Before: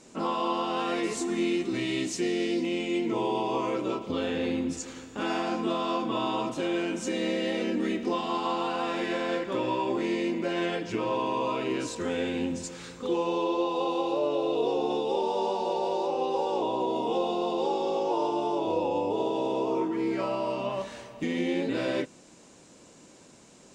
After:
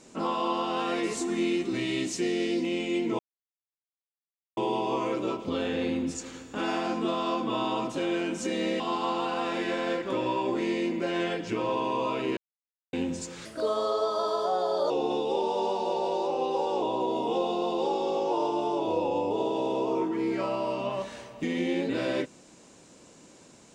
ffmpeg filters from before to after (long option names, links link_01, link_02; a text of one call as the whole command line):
ffmpeg -i in.wav -filter_complex "[0:a]asplit=7[link_01][link_02][link_03][link_04][link_05][link_06][link_07];[link_01]atrim=end=3.19,asetpts=PTS-STARTPTS,afade=type=out:start_time=3.186:duration=0.004:curve=hsin,apad=pad_dur=1.38[link_08];[link_02]atrim=start=3.19:end=7.422,asetpts=PTS-STARTPTS,afade=type=in:duration=0.004:curve=hsin[link_09];[link_03]atrim=start=8.218:end=11.79,asetpts=PTS-STARTPTS,afade=type=out:start_time=3.568:duration=0.004:curve=hsin[link_10];[link_04]atrim=start=11.79:end=12.35,asetpts=PTS-STARTPTS,volume=0[link_11];[link_05]atrim=start=12.35:end=12.874,asetpts=PTS-STARTPTS,afade=type=in:duration=0.004:curve=hsin[link_12];[link_06]atrim=start=12.87:end=14.7,asetpts=PTS-STARTPTS,asetrate=55566,aresample=44100[link_13];[link_07]atrim=start=14.696[link_14];[link_08][link_09]concat=n=2:v=0:a=1[link_15];[link_10][link_11][link_12]concat=n=3:v=0:a=1[link_16];[link_15][link_16]acrossfade=duration=0.004:curve1=hsin:curve2=hsin[link_17];[link_17][link_13]acrossfade=duration=0.004:curve1=hsin:curve2=hsin[link_18];[link_18][link_14]acrossfade=duration=0.004:curve1=hsin:curve2=hsin" out.wav